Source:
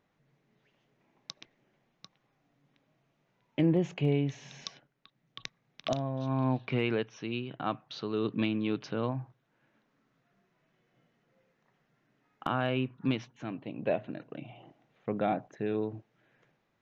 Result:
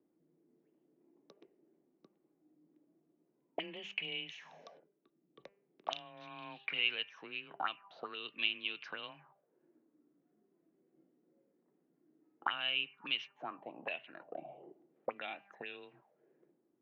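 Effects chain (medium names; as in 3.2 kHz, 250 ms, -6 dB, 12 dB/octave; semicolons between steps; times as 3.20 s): frequency shift +19 Hz; de-hum 199.3 Hz, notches 15; auto-wah 320–2900 Hz, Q 5, up, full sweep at -29 dBFS; trim +9 dB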